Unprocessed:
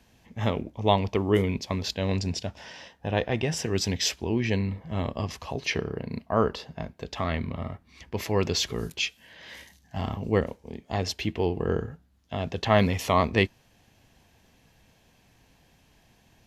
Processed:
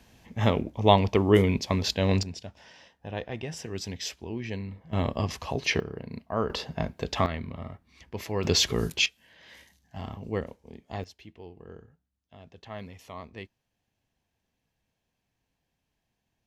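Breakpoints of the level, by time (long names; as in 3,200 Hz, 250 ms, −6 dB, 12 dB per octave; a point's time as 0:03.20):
+3 dB
from 0:02.23 −8.5 dB
from 0:04.93 +2 dB
from 0:05.80 −5 dB
from 0:06.50 +5 dB
from 0:07.26 −5 dB
from 0:08.44 +4 dB
from 0:09.06 −7 dB
from 0:11.04 −19.5 dB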